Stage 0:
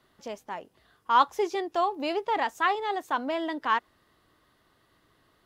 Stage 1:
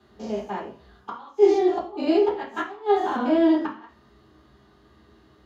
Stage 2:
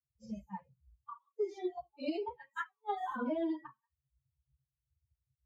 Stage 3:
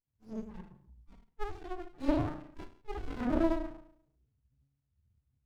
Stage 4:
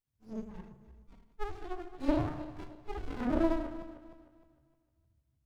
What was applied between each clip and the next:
spectrum averaged block by block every 100 ms; gate with flip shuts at −21 dBFS, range −25 dB; convolution reverb RT60 0.50 s, pre-delay 3 ms, DRR −8 dB; level −7 dB
spectral dynamics exaggerated over time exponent 3; downward compressor 12 to 1, threshold −28 dBFS, peak gain reduction 15.5 dB; level −3.5 dB
harmonic and percussive parts rebalanced percussive −14 dB; feedback delay network reverb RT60 0.46 s, low-frequency decay 1.6×, high-frequency decay 0.75×, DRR −4.5 dB; windowed peak hold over 65 samples
feedback delay that plays each chunk backwards 153 ms, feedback 57%, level −13 dB

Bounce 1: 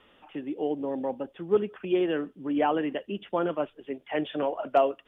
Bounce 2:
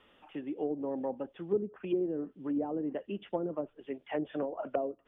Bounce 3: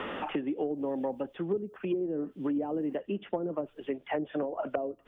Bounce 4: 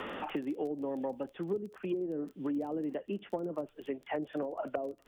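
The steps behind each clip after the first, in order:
treble cut that deepens with the level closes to 410 Hz, closed at −23 dBFS; level −4 dB
multiband upward and downward compressor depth 100%; level +1.5 dB
surface crackle 21 per second −40 dBFS; level −3.5 dB

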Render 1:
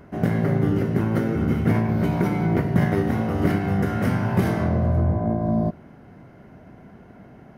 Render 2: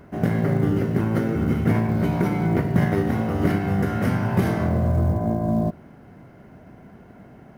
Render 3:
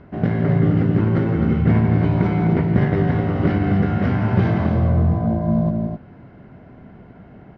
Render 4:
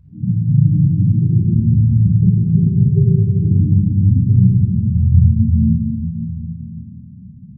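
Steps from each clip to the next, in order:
log-companded quantiser 8 bits
low-pass filter 4,200 Hz 24 dB per octave; low-shelf EQ 200 Hz +4 dB; on a send: loudspeakers that aren't time-aligned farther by 58 metres −9 dB, 89 metres −7 dB
low-shelf EQ 180 Hz +3.5 dB; spectral peaks only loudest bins 4; rectangular room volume 2,700 cubic metres, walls mixed, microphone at 5.1 metres; level −5.5 dB

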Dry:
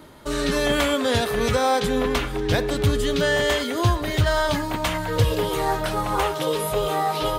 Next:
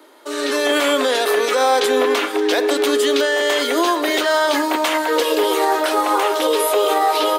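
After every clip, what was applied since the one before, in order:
Butterworth high-pass 290 Hz 48 dB per octave
brickwall limiter −17 dBFS, peak gain reduction 8.5 dB
automatic gain control gain up to 9 dB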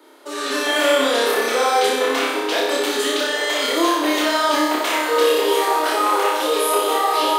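flanger 0.81 Hz, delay 2 ms, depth 8.2 ms, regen −55%
on a send: flutter between parallel walls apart 5.1 metres, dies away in 0.91 s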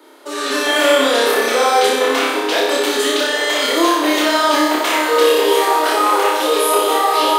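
convolution reverb RT60 2.7 s, pre-delay 170 ms, DRR 17 dB
level +3.5 dB

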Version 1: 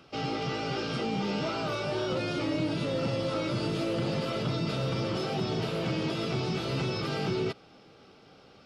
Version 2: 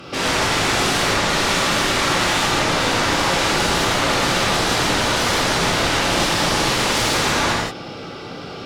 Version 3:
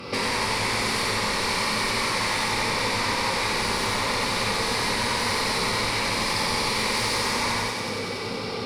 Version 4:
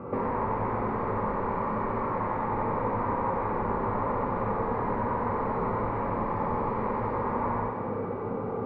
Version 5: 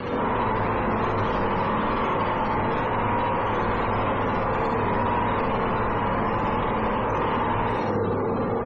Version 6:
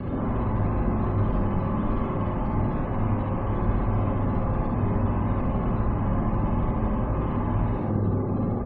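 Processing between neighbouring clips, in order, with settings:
sine wavefolder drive 12 dB, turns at −22.5 dBFS; reverb whose tail is shaped and stops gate 210 ms flat, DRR −6 dB
downward compressor 6 to 1, threshold −25 dBFS, peak gain reduction 10 dB; EQ curve with evenly spaced ripples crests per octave 0.91, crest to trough 9 dB; feedback echo with a high-pass in the loop 93 ms, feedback 84%, high-pass 630 Hz, level −5.5 dB
low-pass filter 1,200 Hz 24 dB per octave
log-companded quantiser 2 bits; gate on every frequency bin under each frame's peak −20 dB strong; ambience of single reflections 50 ms −6 dB, 70 ms −4 dB
spectral tilt −4.5 dB per octave; notch comb filter 470 Hz; hum removal 110.1 Hz, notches 29; level −7.5 dB

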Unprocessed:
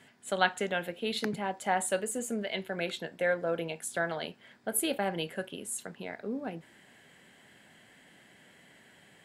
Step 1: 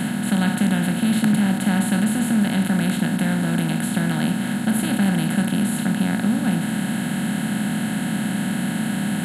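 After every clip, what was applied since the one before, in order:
compressor on every frequency bin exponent 0.2
low shelf with overshoot 300 Hz +13.5 dB, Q 3
level −5 dB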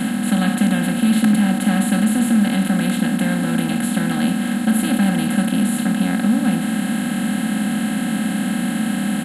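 comb filter 3.8 ms, depth 81%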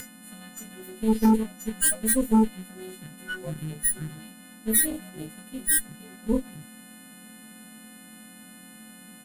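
every partial snapped to a pitch grid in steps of 3 semitones
noise reduction from a noise print of the clip's start 25 dB
harmonic generator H 6 −12 dB, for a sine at −8 dBFS
level −2.5 dB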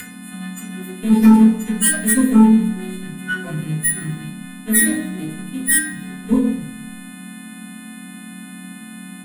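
convolution reverb RT60 0.70 s, pre-delay 3 ms, DRR −3 dB
level +4.5 dB

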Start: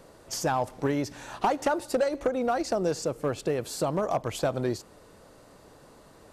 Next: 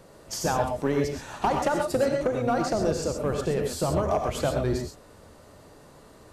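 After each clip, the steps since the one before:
sub-octave generator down 1 octave, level −2 dB
reverb whose tail is shaped and stops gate 150 ms rising, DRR 2.5 dB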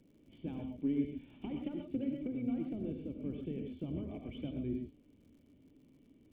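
formant resonators in series i
surface crackle 110 per second −61 dBFS
level −2.5 dB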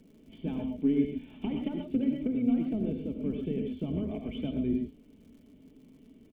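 comb filter 4.6 ms, depth 46%
level +7 dB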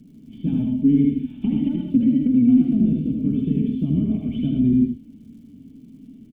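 graphic EQ with 10 bands 125 Hz +9 dB, 250 Hz +9 dB, 500 Hz −11 dB, 1,000 Hz −6 dB, 2,000 Hz −5 dB
single-tap delay 78 ms −4 dB
level +3.5 dB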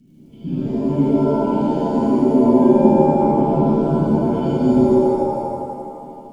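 reverb with rising layers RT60 2 s, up +7 semitones, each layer −2 dB, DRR −6.5 dB
level −6 dB

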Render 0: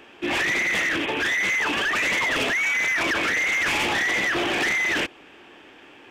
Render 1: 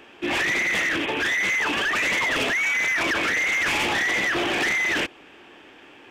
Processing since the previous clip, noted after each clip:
no processing that can be heard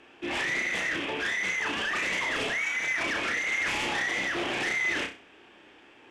low-pass filter 11,000 Hz 24 dB per octave
flutter between parallel walls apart 5.5 metres, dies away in 0.33 s
level −7.5 dB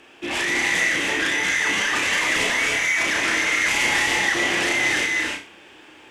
high-shelf EQ 5,700 Hz +12 dB
reverb whose tail is shaped and stops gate 340 ms rising, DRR 0.5 dB
level +4 dB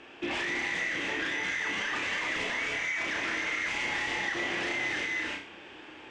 downward compressor 3 to 1, threshold −31 dBFS, peak gain reduction 10.5 dB
high-frequency loss of the air 110 metres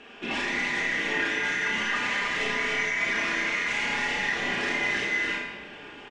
comb filter 4.9 ms, depth 52%
rectangular room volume 1,200 cubic metres, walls mixed, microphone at 1.8 metres

